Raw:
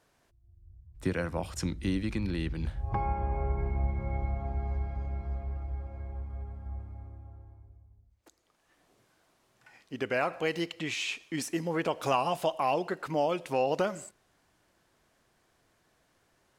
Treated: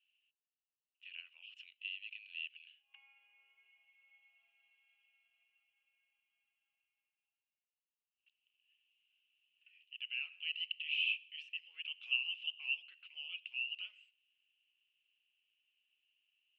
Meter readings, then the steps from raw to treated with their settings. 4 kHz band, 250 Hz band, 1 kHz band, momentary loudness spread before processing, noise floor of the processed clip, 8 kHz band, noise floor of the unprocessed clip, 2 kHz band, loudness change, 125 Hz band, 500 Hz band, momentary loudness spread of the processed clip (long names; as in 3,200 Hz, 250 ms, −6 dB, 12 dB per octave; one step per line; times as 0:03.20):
+1.5 dB, below −40 dB, below −40 dB, 13 LU, below −85 dBFS, below −35 dB, −71 dBFS, −2.5 dB, −7.0 dB, below −40 dB, below −40 dB, 17 LU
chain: flat-topped band-pass 2,800 Hz, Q 7.2
level +6 dB